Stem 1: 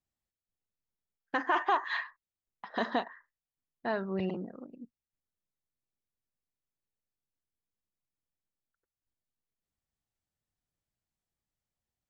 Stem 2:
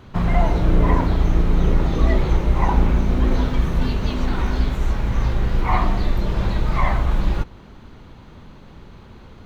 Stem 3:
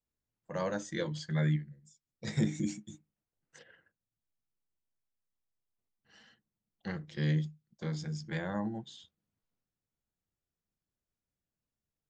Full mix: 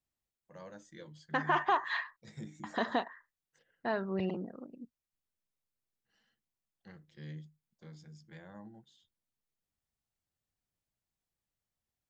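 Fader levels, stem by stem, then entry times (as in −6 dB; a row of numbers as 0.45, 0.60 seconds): −1.0 dB, muted, −15.5 dB; 0.00 s, muted, 0.00 s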